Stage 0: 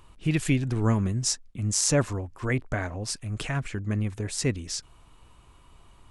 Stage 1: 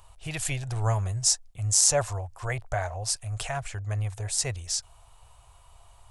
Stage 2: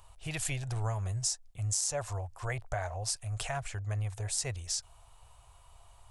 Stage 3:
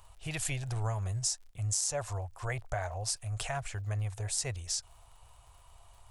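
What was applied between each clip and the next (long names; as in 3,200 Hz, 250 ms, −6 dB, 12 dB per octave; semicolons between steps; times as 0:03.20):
drawn EQ curve 110 Hz 0 dB, 240 Hz −25 dB, 710 Hz +7 dB, 1,100 Hz −1 dB, 2,200 Hz −3 dB, 8,200 Hz +6 dB
downward compressor 6 to 1, threshold −26 dBFS, peak gain reduction 10 dB; level −3 dB
surface crackle 64 per second −52 dBFS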